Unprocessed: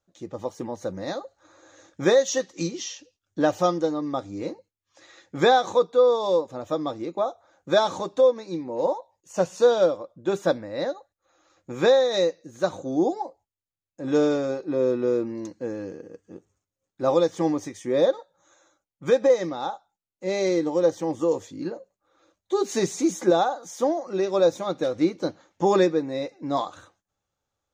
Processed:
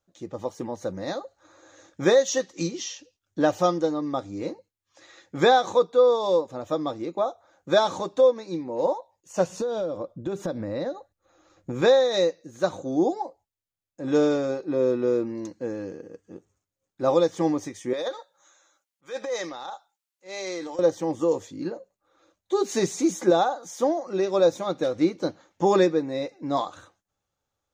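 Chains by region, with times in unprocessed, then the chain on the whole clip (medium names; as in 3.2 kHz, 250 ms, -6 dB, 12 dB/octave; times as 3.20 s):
9.49–11.82 s: bass shelf 440 Hz +10.5 dB + compression 8:1, threshold -25 dBFS
17.93–20.79 s: high-pass 1.3 kHz 6 dB/octave + transient shaper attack -11 dB, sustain +6 dB
whole clip: none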